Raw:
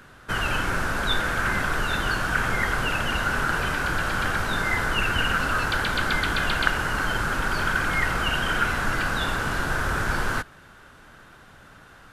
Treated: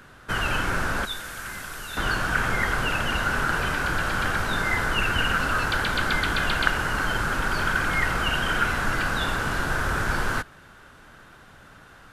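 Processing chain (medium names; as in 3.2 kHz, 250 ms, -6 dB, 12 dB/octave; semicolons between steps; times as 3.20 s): 1.05–1.97 s: pre-emphasis filter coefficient 0.8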